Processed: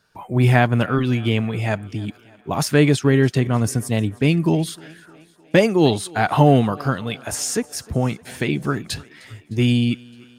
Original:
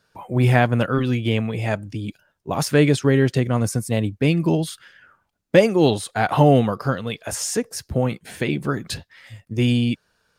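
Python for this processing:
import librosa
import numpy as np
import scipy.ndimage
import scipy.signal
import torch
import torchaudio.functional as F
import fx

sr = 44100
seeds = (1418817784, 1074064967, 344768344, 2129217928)

p1 = fx.peak_eq(x, sr, hz=520.0, db=-6.5, octaves=0.26)
p2 = p1 + fx.echo_thinned(p1, sr, ms=306, feedback_pct=65, hz=190.0, wet_db=-23.0, dry=0)
y = F.gain(torch.from_numpy(p2), 1.5).numpy()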